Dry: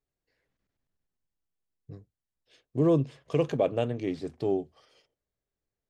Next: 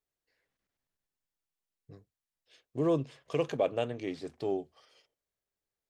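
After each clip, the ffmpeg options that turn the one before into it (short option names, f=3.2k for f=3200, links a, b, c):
-af "lowshelf=f=380:g=-9.5"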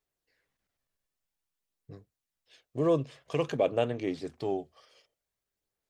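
-af "aphaser=in_gain=1:out_gain=1:delay=1.8:decay=0.25:speed=0.51:type=sinusoidal,volume=2dB"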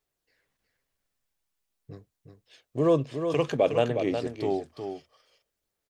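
-af "aecho=1:1:363:0.422,volume=3.5dB"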